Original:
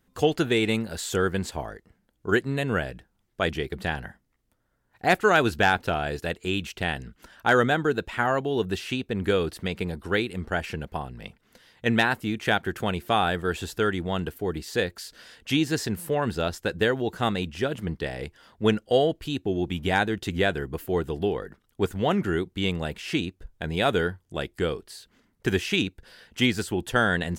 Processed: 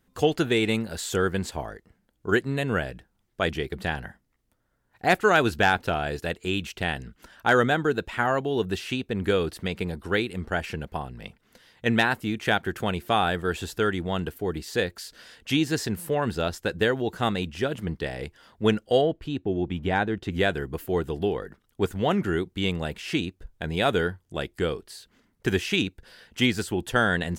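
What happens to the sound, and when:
0:19.01–0:20.32: low-pass filter 1,800 Hz 6 dB per octave

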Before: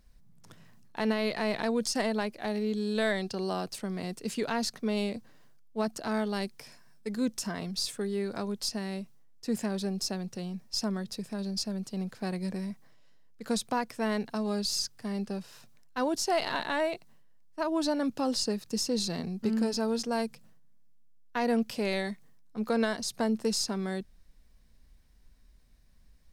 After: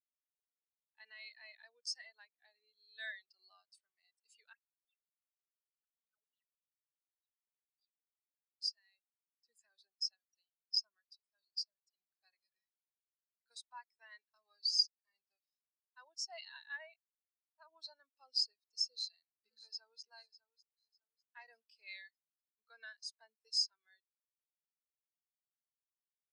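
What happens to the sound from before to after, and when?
0:04.53–0:08.53: LFO wah 3.4 Hz 430–3,600 Hz, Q 15
0:18.90–0:20.02: delay throw 600 ms, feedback 55%, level −7.5 dB
whole clip: Bessel high-pass filter 2,400 Hz, order 2; every bin expanded away from the loudest bin 2.5 to 1

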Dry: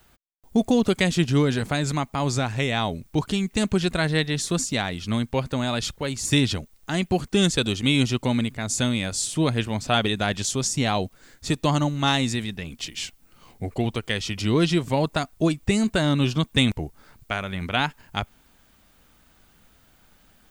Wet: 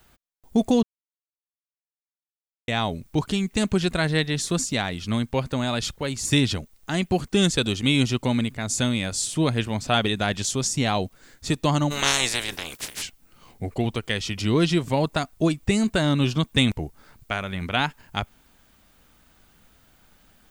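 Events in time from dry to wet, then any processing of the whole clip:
0:00.83–0:02.68: silence
0:11.90–0:13.01: ceiling on every frequency bin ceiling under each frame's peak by 29 dB

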